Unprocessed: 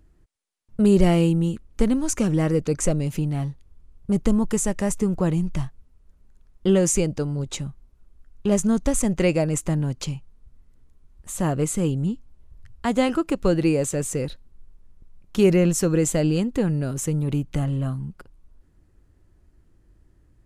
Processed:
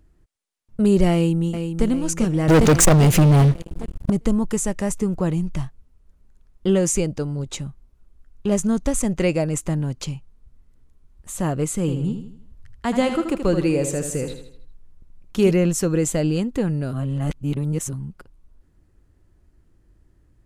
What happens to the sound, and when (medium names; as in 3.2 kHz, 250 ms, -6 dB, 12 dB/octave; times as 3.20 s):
1.13–1.86 s: echo throw 400 ms, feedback 50%, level -7.5 dB
2.48–4.10 s: waveshaping leveller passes 5
11.80–15.51 s: feedback delay 79 ms, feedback 44%, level -8 dB
16.93–17.93 s: reverse